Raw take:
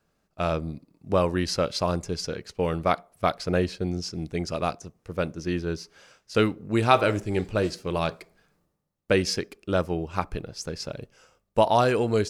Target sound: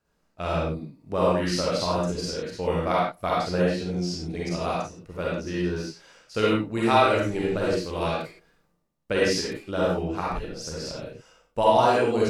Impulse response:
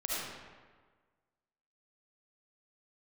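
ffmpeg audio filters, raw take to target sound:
-filter_complex "[1:a]atrim=start_sample=2205,afade=t=out:st=0.31:d=0.01,atrim=end_sample=14112,asetrate=66150,aresample=44100[a];[0:a][a]afir=irnorm=-1:irlink=0"

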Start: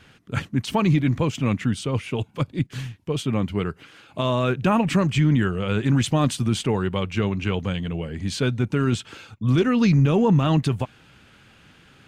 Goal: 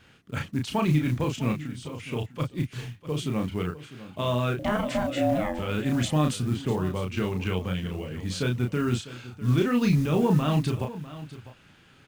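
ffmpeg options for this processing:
-filter_complex "[0:a]asplit=3[a][b][c];[a]afade=t=out:st=1.52:d=0.02[d];[b]acompressor=threshold=-30dB:ratio=5,afade=t=in:st=1.52:d=0.02,afade=t=out:st=1.99:d=0.02[e];[c]afade=t=in:st=1.99:d=0.02[f];[d][e][f]amix=inputs=3:normalize=0,asettb=1/sr,asplit=3[g][h][i];[g]atrim=end=4.594[j];[h]atrim=start=4.59:end=5.59,asetpts=PTS-STARTPTS,afade=t=in:d=0.004:c=qsin,afade=t=out:st=0.996:d=0.004:c=qsin,aeval=exprs='val(0)*sin(2*PI*420*n/s)':c=same[k];[i]atrim=start=5.586[l];[j][k]acrossfade=d=0.004:c1=hsin:c2=qsin[m];[m][l]acrossfade=d=0.004:c1=qsin:c2=hsin,asettb=1/sr,asplit=3[n][o][p];[n]atrim=end=6.414[q];[o]atrim=start=6.41:end=7.04,asetpts=PTS-STARTPTS,afade=t=in:d=0.004:c=qsin,afade=t=out:st=0.626:d=0.004:c=qsin,lowpass=f=1.4k:p=1[r];[p]atrim=start=7.036[s];[q][r]acrossfade=d=0.004:c1=hsin:c2=qsin[t];[t][s]acrossfade=d=0.004:c1=qsin:c2=hsin,acrusher=bits=7:mode=log:mix=0:aa=0.000001,asplit=2[u][v];[v]adelay=33,volume=-4dB[w];[u][w]amix=inputs=2:normalize=0,aecho=1:1:650:0.168,volume=-5.5dB"

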